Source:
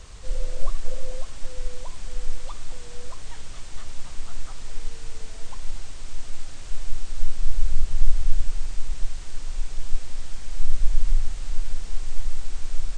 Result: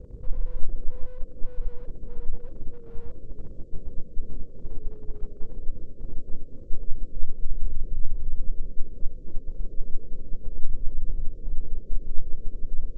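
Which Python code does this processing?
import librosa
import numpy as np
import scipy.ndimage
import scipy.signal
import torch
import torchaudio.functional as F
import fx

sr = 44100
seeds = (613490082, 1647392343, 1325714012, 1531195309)

p1 = fx.pitch_glide(x, sr, semitones=-3.0, runs='starting unshifted')
p2 = scipy.signal.sosfilt(scipy.signal.ellip(4, 1.0, 40, 520.0, 'lowpass', fs=sr, output='sos'), p1)
p3 = fx.low_shelf(p2, sr, hz=97.0, db=-11.5)
p4 = fx.transient(p3, sr, attack_db=9, sustain_db=-3)
p5 = p4 + fx.echo_single(p4, sr, ms=219, db=-22.5, dry=0)
p6 = fx.slew_limit(p5, sr, full_power_hz=0.86)
y = F.gain(torch.from_numpy(p6), 8.5).numpy()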